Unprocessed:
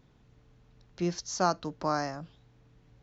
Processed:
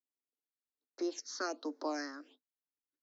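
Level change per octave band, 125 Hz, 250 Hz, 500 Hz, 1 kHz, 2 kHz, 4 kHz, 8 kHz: below −40 dB, −5.5 dB, −7.0 dB, −12.5 dB, −4.5 dB, −5.5 dB, can't be measured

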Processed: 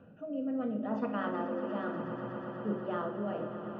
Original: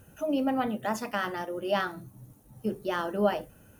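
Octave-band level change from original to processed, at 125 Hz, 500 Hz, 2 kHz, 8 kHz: −1.5 dB, −5.5 dB, −9.5 dB, below −30 dB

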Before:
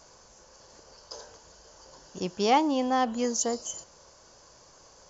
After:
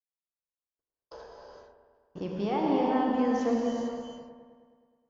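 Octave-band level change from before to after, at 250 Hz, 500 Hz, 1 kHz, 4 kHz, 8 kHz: +2.0 dB, 0.0 dB, −4.0 dB, −10.0 dB, can't be measured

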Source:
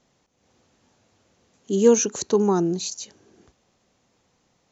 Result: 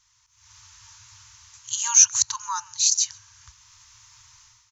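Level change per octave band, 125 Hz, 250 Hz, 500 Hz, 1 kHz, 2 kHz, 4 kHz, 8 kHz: below −20 dB, below −40 dB, below −40 dB, −0.5 dB, +3.0 dB, +9.0 dB, can't be measured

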